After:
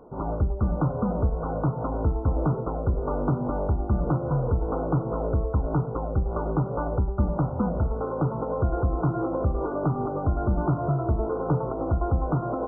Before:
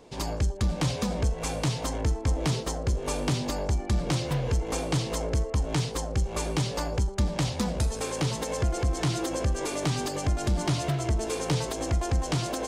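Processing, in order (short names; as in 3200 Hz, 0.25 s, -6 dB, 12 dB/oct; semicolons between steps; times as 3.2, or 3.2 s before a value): brick-wall FIR low-pass 1500 Hz; notches 60/120 Hz; gain +3.5 dB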